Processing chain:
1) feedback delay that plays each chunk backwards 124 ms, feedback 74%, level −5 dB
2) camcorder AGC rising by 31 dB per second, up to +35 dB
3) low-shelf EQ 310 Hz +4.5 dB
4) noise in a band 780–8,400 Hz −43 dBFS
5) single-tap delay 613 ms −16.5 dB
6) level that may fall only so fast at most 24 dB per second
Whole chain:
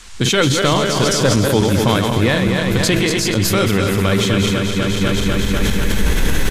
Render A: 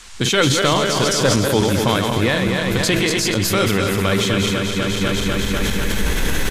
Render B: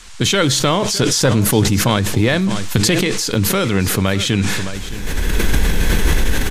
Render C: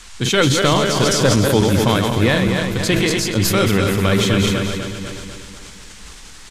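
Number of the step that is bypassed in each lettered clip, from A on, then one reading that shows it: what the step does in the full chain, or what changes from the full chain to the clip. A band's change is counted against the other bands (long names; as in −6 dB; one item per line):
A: 3, 125 Hz band −3.0 dB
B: 1, 8 kHz band +3.5 dB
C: 2, change in crest factor +1.5 dB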